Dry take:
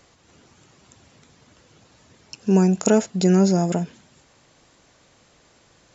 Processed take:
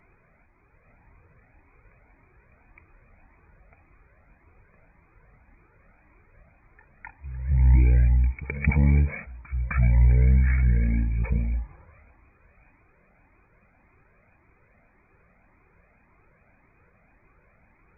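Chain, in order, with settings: wide varispeed 0.331×; pre-echo 259 ms -16.5 dB; Shepard-style flanger rising 1.8 Hz

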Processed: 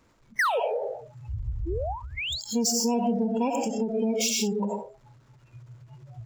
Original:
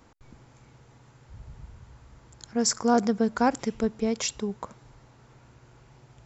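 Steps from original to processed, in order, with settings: 0.39–0.60 s: painted sound fall 410–2100 Hz -20 dBFS; 2.74–3.26 s: bass shelf 120 Hz +6.5 dB; reverberation RT60 0.55 s, pre-delay 45 ms, DRR 3 dB; power-law waveshaper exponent 0.5; peaking EQ 770 Hz -6.5 dB 0.22 oct; compression 3:1, threshold -25 dBFS, peak gain reduction 8.5 dB; 1.66–2.41 s: painted sound rise 310–4900 Hz -31 dBFS; spectral noise reduction 28 dB; endings held to a fixed fall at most 120 dB/s

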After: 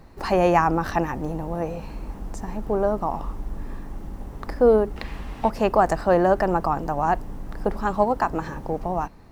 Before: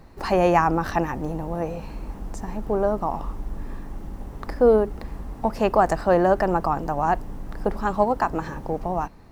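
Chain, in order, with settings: 4.96–5.50 s: peaking EQ 2.8 kHz +14.5 dB 1.8 oct

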